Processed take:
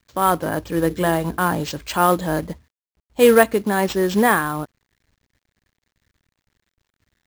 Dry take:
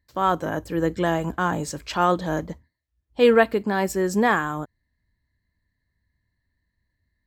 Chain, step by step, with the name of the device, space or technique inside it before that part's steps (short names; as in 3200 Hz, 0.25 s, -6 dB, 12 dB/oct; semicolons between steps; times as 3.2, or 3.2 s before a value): 0.81–1.45 notches 50/100/150/200/250/300/350/400/450 Hz; early companding sampler (sample-rate reducer 11000 Hz, jitter 0%; companded quantiser 6-bit); gain +3.5 dB